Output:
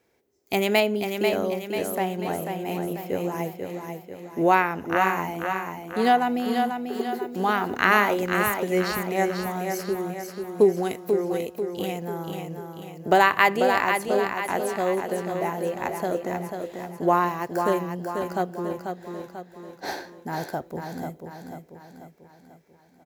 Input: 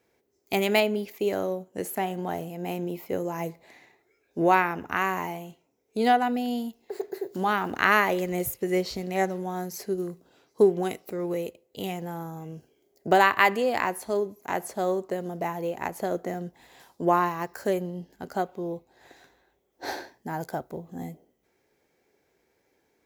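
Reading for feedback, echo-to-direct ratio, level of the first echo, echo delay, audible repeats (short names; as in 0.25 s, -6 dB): 49%, -5.0 dB, -6.0 dB, 0.491 s, 5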